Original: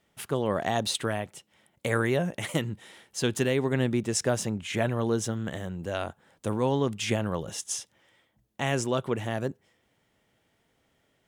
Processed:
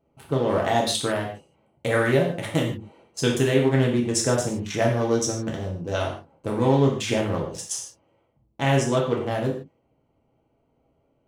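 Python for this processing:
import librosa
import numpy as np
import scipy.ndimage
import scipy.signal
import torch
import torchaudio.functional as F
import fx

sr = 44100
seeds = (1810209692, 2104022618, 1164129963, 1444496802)

y = fx.wiener(x, sr, points=25)
y = fx.peak_eq(y, sr, hz=5800.0, db=12.0, octaves=0.31, at=(4.53, 6.09))
y = fx.rev_gated(y, sr, seeds[0], gate_ms=180, shape='falling', drr_db=-2.0)
y = y * librosa.db_to_amplitude(2.0)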